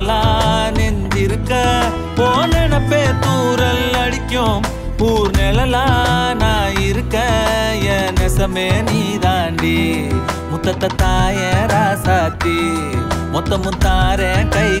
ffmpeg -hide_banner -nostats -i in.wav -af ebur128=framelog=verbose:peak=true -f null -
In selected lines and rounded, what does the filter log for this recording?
Integrated loudness:
  I:         -15.7 LUFS
  Threshold: -25.7 LUFS
Loudness range:
  LRA:         1.3 LU
  Threshold: -35.7 LUFS
  LRA low:   -16.4 LUFS
  LRA high:  -15.1 LUFS
True peak:
  Peak:       -3.4 dBFS